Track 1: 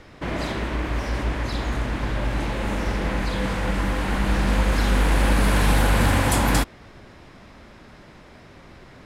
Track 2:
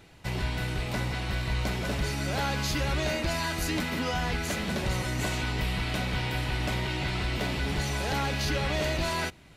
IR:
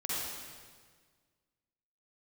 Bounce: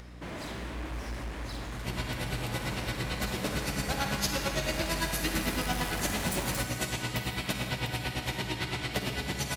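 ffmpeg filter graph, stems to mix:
-filter_complex "[0:a]highpass=42,acompressor=mode=upward:threshold=-37dB:ratio=2.5,volume=24dB,asoftclip=hard,volume=-24dB,volume=-12dB,asplit=2[link_01][link_02];[link_02]volume=-13.5dB[link_03];[1:a]highpass=97,aeval=exprs='val(0)*pow(10,-21*(0.5-0.5*cos(2*PI*8.9*n/s))/20)':channel_layout=same,adelay=1550,volume=-2dB,asplit=2[link_04][link_05];[link_05]volume=-5dB[link_06];[2:a]atrim=start_sample=2205[link_07];[link_03][link_06]amix=inputs=2:normalize=0[link_08];[link_08][link_07]afir=irnorm=-1:irlink=0[link_09];[link_01][link_04][link_09]amix=inputs=3:normalize=0,highshelf=frequency=6300:gain=9.5,aeval=exprs='val(0)+0.00501*(sin(2*PI*60*n/s)+sin(2*PI*2*60*n/s)/2+sin(2*PI*3*60*n/s)/3+sin(2*PI*4*60*n/s)/4+sin(2*PI*5*60*n/s)/5)':channel_layout=same"

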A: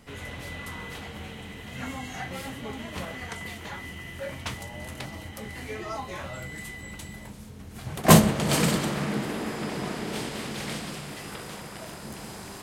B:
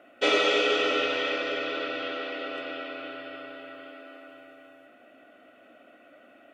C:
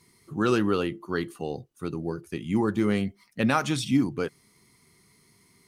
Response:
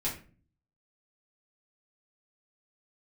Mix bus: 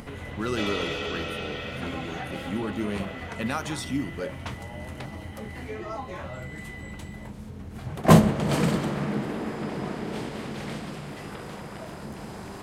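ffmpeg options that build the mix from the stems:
-filter_complex "[0:a]lowpass=frequency=1300:poles=1,acompressor=mode=upward:threshold=-34dB:ratio=2.5,volume=1dB[link_01];[1:a]adelay=350,volume=-9dB[link_02];[2:a]volume=-6.5dB[link_03];[link_01][link_02][link_03]amix=inputs=3:normalize=0,highshelf=frequency=6100:gain=7"

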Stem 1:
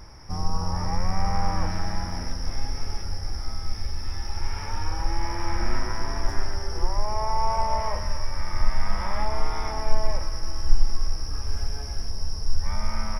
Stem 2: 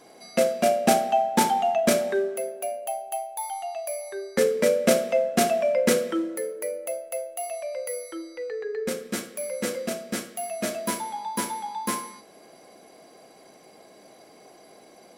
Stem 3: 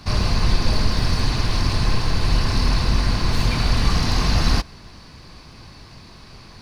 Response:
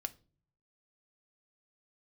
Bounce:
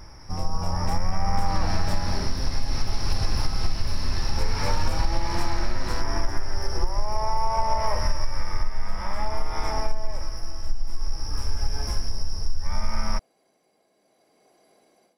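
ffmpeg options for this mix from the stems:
-filter_complex "[0:a]volume=-3.5dB,asplit=2[link_01][link_02];[link_02]volume=-3dB[link_03];[1:a]aeval=exprs='(tanh(3.55*val(0)+0.8)-tanh(0.8))/3.55':channel_layout=same,volume=-16dB[link_04];[2:a]adelay=1400,volume=-15.5dB[link_05];[3:a]atrim=start_sample=2205[link_06];[link_03][link_06]afir=irnorm=-1:irlink=0[link_07];[link_01][link_04][link_05][link_07]amix=inputs=4:normalize=0,dynaudnorm=framelen=430:gausssize=3:maxgain=11.5dB,tremolo=f=0.61:d=0.46,acompressor=threshold=-16dB:ratio=6"

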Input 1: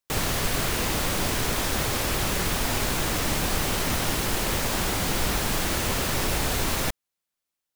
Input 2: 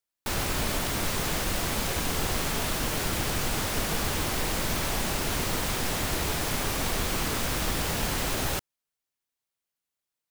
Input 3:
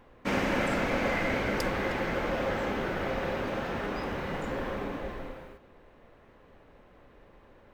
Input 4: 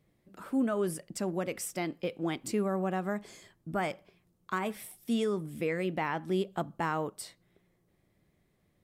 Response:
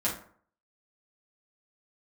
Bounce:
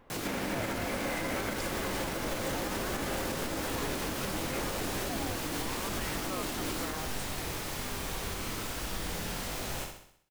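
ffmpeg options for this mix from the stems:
-filter_complex "[0:a]aeval=exprs='val(0)*sin(2*PI*300*n/s)':channel_layout=same,flanger=delay=15:depth=7.1:speed=1.4,volume=-3dB[link_01];[1:a]flanger=delay=20:depth=2.7:speed=1.2,adelay=1250,volume=-6dB,asplit=2[link_02][link_03];[link_03]volume=-5.5dB[link_04];[2:a]volume=-2.5dB[link_05];[3:a]aeval=exprs='val(0)*sin(2*PI*660*n/s+660*0.55/0.65*sin(2*PI*0.65*n/s))':channel_layout=same,volume=-4.5dB[link_06];[link_04]aecho=0:1:64|128|192|256|320|384|448:1|0.51|0.26|0.133|0.0677|0.0345|0.0176[link_07];[link_01][link_02][link_05][link_06][link_07]amix=inputs=5:normalize=0,alimiter=limit=-23.5dB:level=0:latency=1:release=127"

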